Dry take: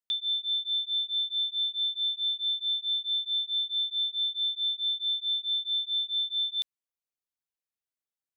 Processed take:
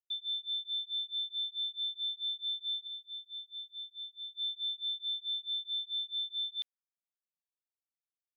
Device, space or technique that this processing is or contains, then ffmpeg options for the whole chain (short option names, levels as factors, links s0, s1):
hearing-loss simulation: -filter_complex "[0:a]asettb=1/sr,asplit=3[s0][s1][s2];[s0]atrim=end=2.874[s3];[s1]atrim=start=2.87:end=4.33,asetpts=PTS-STARTPTS,afade=t=in:d=0.004:c=qsin,afade=t=out:st=1.456:d=0.004:c=qsin,highshelf=f=3200:g=-8.5[s4];[s2]atrim=start=4.326[s5];[s3][s4]acrossfade=d=0.004:c1=hsin:c2=qsin[s6];[s6][s5]acrossfade=d=0.004:c1=qsin:c2=hsin,lowpass=3400,agate=range=0.0224:threshold=0.0224:ratio=3:detection=peak,volume=0.708"